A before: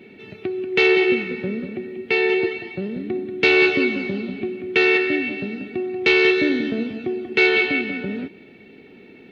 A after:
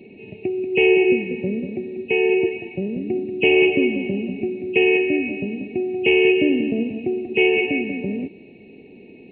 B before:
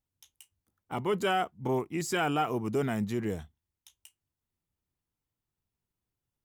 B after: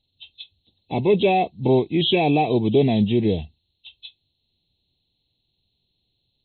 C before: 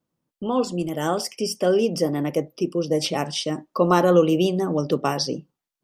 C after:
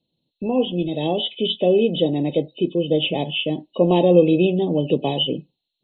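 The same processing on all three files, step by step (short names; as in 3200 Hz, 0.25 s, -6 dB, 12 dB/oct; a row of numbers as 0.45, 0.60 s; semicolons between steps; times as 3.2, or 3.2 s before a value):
nonlinear frequency compression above 2500 Hz 4:1; Butterworth band-stop 1400 Hz, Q 0.73; match loudness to -20 LUFS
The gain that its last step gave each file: +2.0, +12.5, +3.0 dB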